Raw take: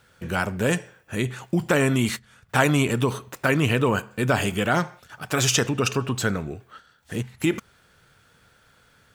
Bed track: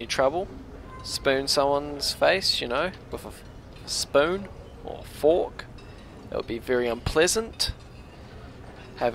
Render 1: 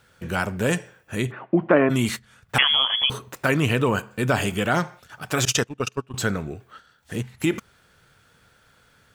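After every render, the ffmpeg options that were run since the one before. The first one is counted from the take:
ffmpeg -i in.wav -filter_complex "[0:a]asplit=3[link_01][link_02][link_03];[link_01]afade=type=out:start_time=1.3:duration=0.02[link_04];[link_02]highpass=frequency=160:width=0.5412,highpass=frequency=160:width=1.3066,equalizer=frequency=320:width_type=q:width=4:gain=8,equalizer=frequency=630:width_type=q:width=4:gain=9,equalizer=frequency=1100:width_type=q:width=4:gain=5,lowpass=frequency=2300:width=0.5412,lowpass=frequency=2300:width=1.3066,afade=type=in:start_time=1.3:duration=0.02,afade=type=out:start_time=1.89:duration=0.02[link_05];[link_03]afade=type=in:start_time=1.89:duration=0.02[link_06];[link_04][link_05][link_06]amix=inputs=3:normalize=0,asettb=1/sr,asplit=3[link_07][link_08][link_09];[link_07]atrim=end=2.584[link_10];[link_08]atrim=start=2.58:end=3.1,asetpts=PTS-STARTPTS,afade=type=in:duration=0.004:curve=qsin,afade=type=out:start_time=0.516:duration=0.004:curve=qsin,lowpass=frequency=3000:width_type=q:width=0.5098,lowpass=frequency=3000:width_type=q:width=0.6013,lowpass=frequency=3000:width_type=q:width=0.9,lowpass=frequency=3000:width_type=q:width=2.563,afreqshift=-3500[link_11];[link_09]atrim=start=3.096[link_12];[link_10][link_11]acrossfade=duration=0.004:curve1=hsin:curve2=qsin[link_13];[link_13][link_12]acrossfade=duration=0.004:curve1=qsin:curve2=hsin,asettb=1/sr,asplit=3[link_14][link_15][link_16];[link_14]atrim=end=5.454[link_17];[link_15]atrim=start=5.45:end=6.14,asetpts=PTS-STARTPTS,afade=type=in:duration=0.004:curve=qsin,afade=type=out:start_time=0.686:duration=0.004:curve=qsin,agate=range=-26dB:threshold=-22dB:ratio=16:release=100:detection=peak[link_18];[link_16]atrim=start=6.136[link_19];[link_17][link_18]acrossfade=duration=0.004:curve1=hsin:curve2=qsin[link_20];[link_20][link_19]acrossfade=duration=0.004:curve1=qsin:curve2=hsin" out.wav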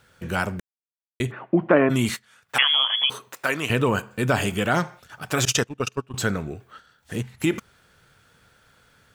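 ffmpeg -i in.wav -filter_complex "[0:a]asettb=1/sr,asplit=3[link_01][link_02][link_03];[link_01]atrim=end=2.144[link_04];[link_02]atrim=start=2.14:end=3.7,asetpts=PTS-STARTPTS,afade=type=in:duration=0.004:curve=qsin,afade=type=out:start_time=1.556:duration=0.004:curve=qsin,highpass=frequency=700:poles=1[link_05];[link_03]atrim=start=3.696[link_06];[link_04][link_05]acrossfade=duration=0.004:curve1=hsin:curve2=qsin[link_07];[link_07][link_06]acrossfade=duration=0.004:curve1=qsin:curve2=hsin,asplit=3[link_08][link_09][link_10];[link_08]atrim=end=0.6,asetpts=PTS-STARTPTS,afade=type=out:start_time=0.596:duration=0.004:curve=hsin[link_11];[link_09]atrim=start=0.6:end=1.2,asetpts=PTS-STARTPTS,volume=0[link_12];[link_10]atrim=start=1.2,asetpts=PTS-STARTPTS,afade=type=in:duration=0.004:curve=hsin[link_13];[link_11][link_12][link_13]concat=n=3:v=0:a=1" out.wav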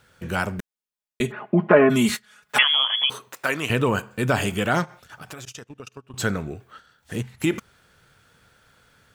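ffmpeg -i in.wav -filter_complex "[0:a]asettb=1/sr,asplit=3[link_01][link_02][link_03];[link_01]atrim=end=0.584[link_04];[link_02]atrim=start=0.58:end=2.63,asetpts=PTS-STARTPTS,afade=type=in:duration=0.004:curve=qsin,afade=type=out:start_time=2.046:duration=0.004:curve=qsin,aecho=1:1:4.8:0.95,atrim=end_sample=90405[link_05];[link_03]atrim=start=2.626[link_06];[link_04][link_05]acrossfade=duration=0.004:curve1=hsin:curve2=qsin[link_07];[link_07][link_06]acrossfade=duration=0.004:curve1=qsin:curve2=hsin,asplit=3[link_08][link_09][link_10];[link_08]afade=type=out:start_time=4.84:duration=0.02[link_11];[link_09]acompressor=threshold=-35dB:ratio=12:attack=3.2:release=140:knee=1:detection=peak,afade=type=in:start_time=4.84:duration=0.02,afade=type=out:start_time=6.18:duration=0.02[link_12];[link_10]afade=type=in:start_time=6.18:duration=0.02[link_13];[link_11][link_12][link_13]amix=inputs=3:normalize=0" out.wav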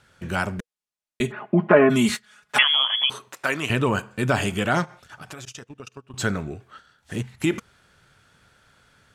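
ffmpeg -i in.wav -af "lowpass=11000,bandreject=frequency=480:width=12" out.wav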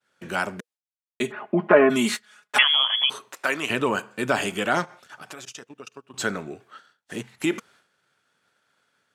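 ffmpeg -i in.wav -af "highpass=250,agate=range=-33dB:threshold=-51dB:ratio=3:detection=peak" out.wav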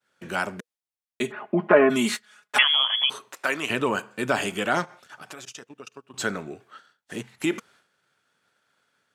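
ffmpeg -i in.wav -af "volume=-1dB" out.wav

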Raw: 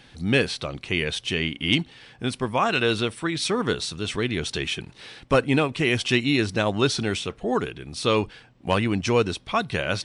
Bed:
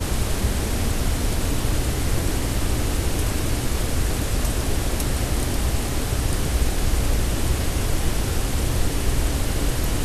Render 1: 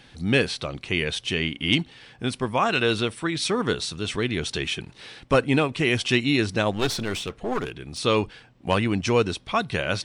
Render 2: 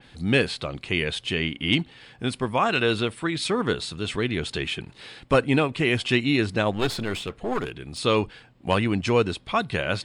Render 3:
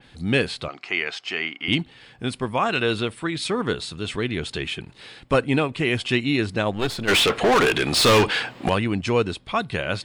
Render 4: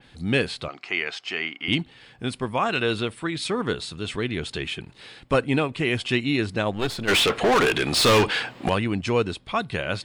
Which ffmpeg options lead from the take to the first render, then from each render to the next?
ffmpeg -i in.wav -filter_complex "[0:a]asettb=1/sr,asplit=3[link_01][link_02][link_03];[link_01]atrim=end=6.714[link_04];[link_02]atrim=start=6.71:end=7.98,asetpts=PTS-STARTPTS,afade=type=in:duration=0.004:curve=qsin,afade=type=out:start_time=1.266:duration=0.004:curve=qsin,aeval=exprs='clip(val(0),-1,0.0335)':channel_layout=same[link_05];[link_03]atrim=start=7.976[link_06];[link_04][link_05]acrossfade=duration=0.004:curve1=hsin:curve2=qsin[link_07];[link_07][link_06]acrossfade=duration=0.004:curve1=qsin:curve2=hsin" out.wav
ffmpeg -i in.wav -af "bandreject=frequency=5800:width=6.6,adynamicequalizer=threshold=0.0141:dfrequency=3400:dqfactor=0.7:tfrequency=3400:tqfactor=0.7:attack=5:release=100:ratio=0.375:range=2:mode=cutabove:tftype=highshelf" out.wav
ffmpeg -i in.wav -filter_complex "[0:a]asettb=1/sr,asplit=3[link_01][link_02][link_03];[link_01]atrim=end=0.684[link_04];[link_02]atrim=start=0.68:end=1.68,asetpts=PTS-STARTPTS,afade=type=in:duration=0.004:curve=qsin,afade=type=out:start_time=0.996:duration=0.004:curve=qsin,highpass=400,equalizer=frequency=520:width_type=q:width=4:gain=-8,equalizer=frequency=730:width_type=q:width=4:gain=7,equalizer=frequency=1300:width_type=q:width=4:gain=7,equalizer=frequency=2100:width_type=q:width=4:gain=4,equalizer=frequency=3600:width_type=q:width=4:gain=-7,equalizer=frequency=5200:width_type=q:width=4:gain=6,lowpass=frequency=7000:width=0.5412,lowpass=frequency=7000:width=1.3066[link_05];[link_03]atrim=start=1.676[link_06];[link_04][link_05]acrossfade=duration=0.004:curve1=hsin:curve2=qsin[link_07];[link_07][link_06]acrossfade=duration=0.004:curve1=qsin:curve2=hsin,asplit=3[link_08][link_09][link_10];[link_08]afade=type=out:start_time=7.07:duration=0.02[link_11];[link_09]asplit=2[link_12][link_13];[link_13]highpass=frequency=720:poles=1,volume=32dB,asoftclip=type=tanh:threshold=-9dB[link_14];[link_12][link_14]amix=inputs=2:normalize=0,lowpass=frequency=5700:poles=1,volume=-6dB,afade=type=in:start_time=7.07:duration=0.02,afade=type=out:start_time=8.68:duration=0.02[link_15];[link_10]afade=type=in:start_time=8.68:duration=0.02[link_16];[link_11][link_15][link_16]amix=inputs=3:normalize=0" out.wav
ffmpeg -i in.wav -af "volume=-1.5dB" out.wav

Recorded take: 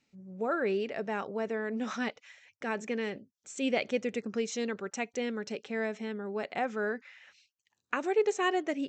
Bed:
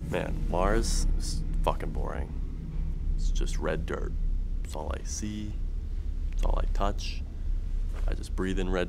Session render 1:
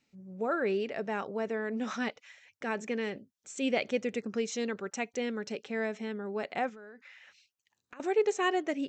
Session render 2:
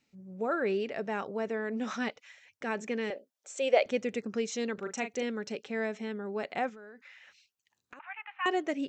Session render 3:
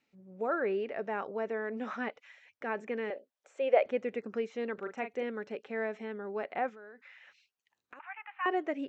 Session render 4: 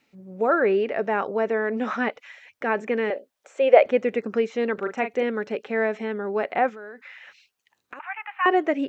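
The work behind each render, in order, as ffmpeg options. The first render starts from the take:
ffmpeg -i in.wav -filter_complex "[0:a]asettb=1/sr,asplit=3[link_01][link_02][link_03];[link_01]atrim=end=6.694[link_04];[link_02]atrim=start=6.69:end=8,asetpts=PTS-STARTPTS,afade=type=in:duration=0.004:curve=qsin,afade=type=out:start_time=1.306:duration=0.004:curve=qsin,acompressor=threshold=-47dB:ratio=8:attack=3.2:release=140:knee=1:detection=peak[link_05];[link_03]atrim=start=7.996[link_06];[link_04][link_05]acrossfade=duration=0.004:curve1=hsin:curve2=qsin[link_07];[link_07][link_06]acrossfade=duration=0.004:curve1=qsin:curve2=hsin" out.wav
ffmpeg -i in.wav -filter_complex "[0:a]asettb=1/sr,asplit=3[link_01][link_02][link_03];[link_01]atrim=end=3.104[link_04];[link_02]atrim=start=3.1:end=3.86,asetpts=PTS-STARTPTS,afade=type=in:duration=0.004:curve=qsin,afade=type=out:start_time=0.756:duration=0.004:curve=qsin,highpass=frequency=570:width_type=q:width=3[link_05];[link_03]atrim=start=3.856[link_06];[link_04][link_05]acrossfade=duration=0.004:curve1=hsin:curve2=qsin[link_07];[link_07][link_06]acrossfade=duration=0.004:curve1=qsin:curve2=hsin,asettb=1/sr,asplit=3[link_08][link_09][link_10];[link_08]atrim=end=4.744[link_11];[link_09]atrim=start=4.74:end=5.23,asetpts=PTS-STARTPTS,afade=type=in:duration=0.004:curve=qsin,afade=type=out:start_time=0.486:duration=0.004:curve=qsin,asplit=2[link_12][link_13];[link_13]adelay=39,volume=-8dB[link_14];[link_12][link_14]amix=inputs=2:normalize=0,atrim=end_sample=21609[link_15];[link_10]atrim=start=5.226[link_16];[link_11][link_15]acrossfade=duration=0.004:curve1=hsin:curve2=qsin[link_17];[link_17][link_16]acrossfade=duration=0.004:curve1=qsin:curve2=hsin,asettb=1/sr,asplit=3[link_18][link_19][link_20];[link_18]atrim=end=7.994[link_21];[link_19]atrim=start=7.99:end=8.46,asetpts=PTS-STARTPTS,afade=type=in:duration=0.004:curve=qsin,afade=type=out:start_time=0.466:duration=0.004:curve=qsin,asuperpass=centerf=1600:order=12:qfactor=0.78[link_22];[link_20]atrim=start=8.456[link_23];[link_21][link_22]acrossfade=duration=0.004:curve1=hsin:curve2=qsin[link_24];[link_24][link_23]acrossfade=duration=0.004:curve1=qsin:curve2=hsin" out.wav
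ffmpeg -i in.wav -filter_complex "[0:a]acrossover=split=2500[link_01][link_02];[link_02]acompressor=threshold=-57dB:ratio=4:attack=1:release=60[link_03];[link_01][link_03]amix=inputs=2:normalize=0,bass=frequency=250:gain=-9,treble=frequency=4000:gain=-10" out.wav
ffmpeg -i in.wav -af "volume=11dB" out.wav

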